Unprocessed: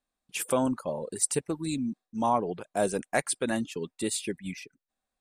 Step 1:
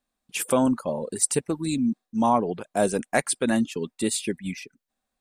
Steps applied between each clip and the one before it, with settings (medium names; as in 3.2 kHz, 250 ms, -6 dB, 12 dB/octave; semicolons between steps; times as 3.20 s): peaking EQ 230 Hz +4.5 dB 0.36 oct; trim +4 dB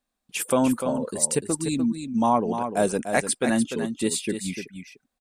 delay 297 ms -8 dB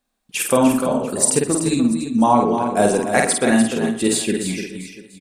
multi-tap echo 49/121/691 ms -3.5/-15/-18.5 dB; spring tank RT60 1.2 s, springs 46 ms, chirp 50 ms, DRR 12.5 dB; trim +5 dB